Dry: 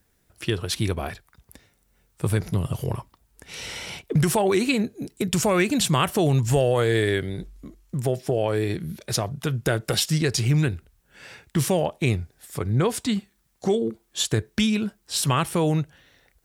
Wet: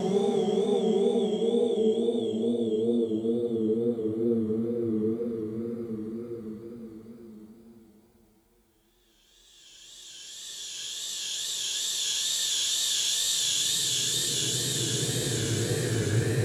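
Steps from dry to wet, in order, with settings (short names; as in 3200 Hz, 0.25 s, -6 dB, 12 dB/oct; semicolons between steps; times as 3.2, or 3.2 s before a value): in parallel at -2.5 dB: negative-ratio compressor -26 dBFS; on the sum: Paulstretch 26×, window 0.25 s, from 13.71; wow and flutter 78 cents; gain -6.5 dB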